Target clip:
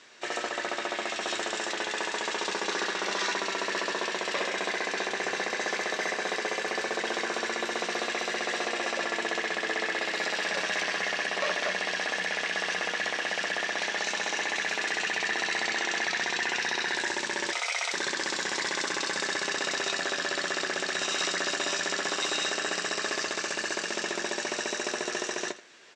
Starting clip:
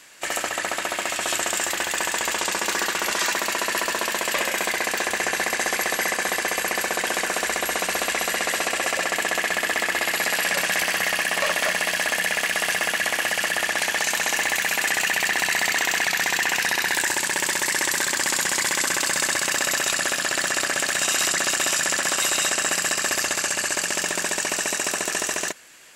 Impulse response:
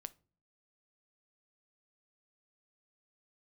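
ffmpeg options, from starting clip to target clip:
-filter_complex "[0:a]aemphasis=mode=reproduction:type=75kf,asplit=2[a][b];[b]alimiter=limit=-19.5dB:level=0:latency=1:release=72,volume=3dB[c];[a][c]amix=inputs=2:normalize=0,flanger=delay=8.2:depth=2.5:regen=66:speed=0.12:shape=triangular,asettb=1/sr,asplit=3[d][e][f];[d]atrim=end=17.524[g];[e]atrim=start=17.52:end=17.93,asetpts=PTS-STARTPTS,afade=t=in:d=0.004:c=qsin,afade=t=out:st=0.406:d=0.004:c=qsin,afreqshift=350[h];[f]atrim=start=17.926[i];[g][h]acrossfade=d=0.004:c1=hsin:c2=qsin[j];[j][i]acrossfade=d=0.004:c1=qsin:c2=hsin,highpass=150,equalizer=f=400:t=q:w=4:g=7,equalizer=f=3.8k:t=q:w=4:g=7,equalizer=f=5.6k:t=q:w=4:g=8,lowpass=f=8.1k:w=0.5412,lowpass=f=8.1k:w=1.3066,aecho=1:1:82:0.15,volume=-5.5dB"

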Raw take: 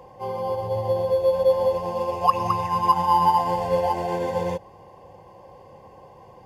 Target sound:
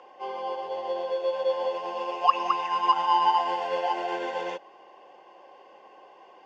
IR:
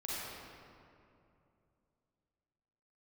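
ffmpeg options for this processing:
-af "highpass=f=340:w=0.5412,highpass=f=340:w=1.3066,equalizer=f=500:t=q:w=4:g=-9,equalizer=f=960:t=q:w=4:g=-6,equalizer=f=1.4k:t=q:w=4:g=8,equalizer=f=2.9k:t=q:w=4:g=7,equalizer=f=4.6k:t=q:w=4:g=-4,lowpass=f=5.9k:w=0.5412,lowpass=f=5.9k:w=1.3066"

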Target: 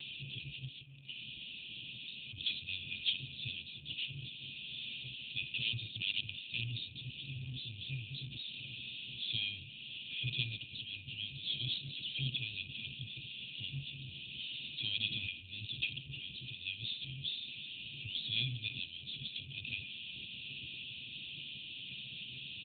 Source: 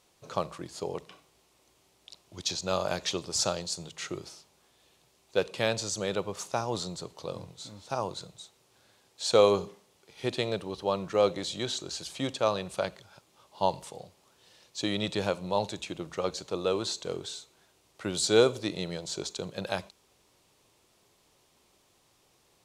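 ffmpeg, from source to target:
-filter_complex "[0:a]aeval=exprs='val(0)+0.5*0.0266*sgn(val(0))':c=same,asettb=1/sr,asplit=3[a][b][c];[a]atrim=end=0.644[d];[b]atrim=start=0.64:end=2.38,asetpts=PTS-STARTPTS,afade=t=in:d=0.004:c=qsin,afade=t=out:st=1.736:d=0.004:c=qsin,acompressor=threshold=-36dB:ratio=10[e];[c]atrim=start=2.376[f];[d][e]acrossfade=d=0.004:c1=hsin:c2=qsin[g];[g][f]acrossfade=d=0.004:c1=qsin:c2=hsin,aemphasis=mode=reproduction:type=50fm,asplit=2[h][i];[i]adelay=1187,lowpass=f=1.8k:p=1,volume=-18dB,asplit=2[j][k];[k]adelay=1187,lowpass=f=1.8k:p=1,volume=0.41,asplit=2[l][m];[m]adelay=1187,lowpass=f=1.8k:p=1,volume=0.41[n];[h][j][l][n]amix=inputs=4:normalize=0,asettb=1/sr,asplit=3[o][p][q];[o]atrim=end=5.604[r];[p]atrim=start=5.6:end=6.64,asetpts=PTS-STARTPTS,afade=t=in:d=0.004:c=qsin,afade=t=out:st=1.036:d=0.004:c=qsin,aeval=exprs='(mod(13.3*val(0)+1,2)-1)/13.3':c=same[s];[q]atrim=start=6.636[t];[r][s]acrossfade=d=0.004:c1=hsin:c2=qsin[u];[u][t]acrossfade=d=0.004:c1=qsin:c2=hsin,equalizer=f=100:t=o:w=0.57:g=-13,anlmdn=0.0631,afftfilt=real='re*(1-between(b*sr/4096,150,2400))':imag='im*(1-between(b*sr/4096,150,2400))':win_size=4096:overlap=0.75,volume=4.5dB" -ar 8000 -c:a libopencore_amrnb -b:a 10200

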